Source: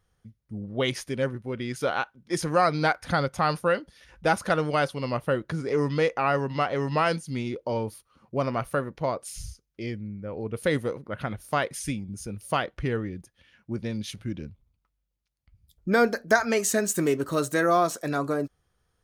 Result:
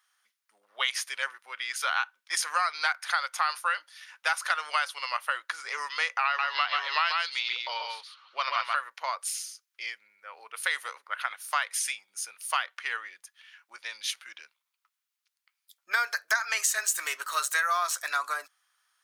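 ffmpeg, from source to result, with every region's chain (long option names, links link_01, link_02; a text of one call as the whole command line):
ffmpeg -i in.wav -filter_complex "[0:a]asettb=1/sr,asplit=3[link_01][link_02][link_03];[link_01]atrim=end=6.254[link_04];[link_02]atrim=start=6.25:end=8.76,asetpts=PTS-STARTPTS,afade=type=in:duration=0.004:curve=qsin,afade=type=out:start_time=2.506:duration=0.004:curve=qsin,lowpass=frequency=3900:width_type=q:width=3.3,aecho=1:1:134:0.668,atrim=end_sample=110691[link_05];[link_03]atrim=start=8.756[link_06];[link_04][link_05]acrossfade=duration=0.004:curve1=hsin:curve2=qsin[link_07];[link_07][link_06]acrossfade=duration=0.004:curve1=qsin:curve2=hsin,highpass=frequency=1100:width=0.5412,highpass=frequency=1100:width=1.3066,acompressor=threshold=-30dB:ratio=6,volume=7dB" out.wav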